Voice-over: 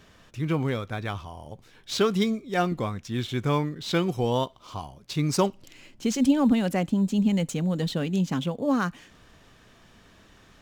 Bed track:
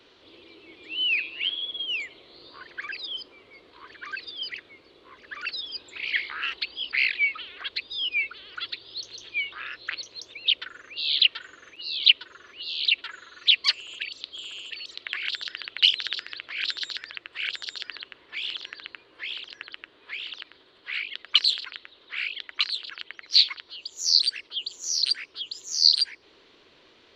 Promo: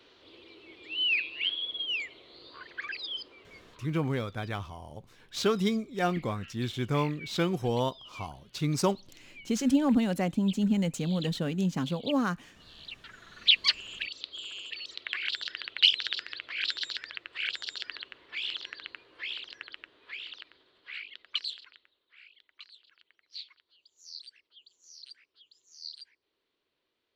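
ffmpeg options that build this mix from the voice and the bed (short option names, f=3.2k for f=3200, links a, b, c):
-filter_complex "[0:a]adelay=3450,volume=-3.5dB[a];[1:a]volume=17dB,afade=t=out:st=3.64:d=0.3:silence=0.105925,afade=t=in:st=12.93:d=0.53:silence=0.105925,afade=t=out:st=19.21:d=2.85:silence=0.0749894[b];[a][b]amix=inputs=2:normalize=0"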